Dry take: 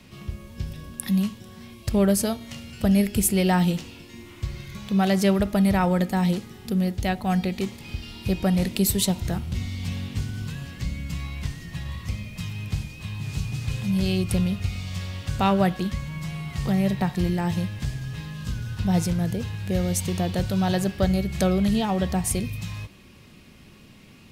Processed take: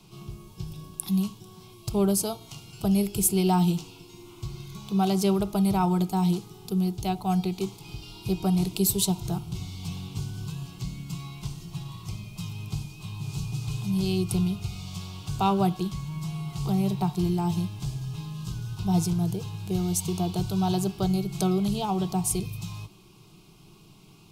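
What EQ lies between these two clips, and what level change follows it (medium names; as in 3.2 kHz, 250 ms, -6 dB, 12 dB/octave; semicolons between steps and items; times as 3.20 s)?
static phaser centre 360 Hz, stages 8; 0.0 dB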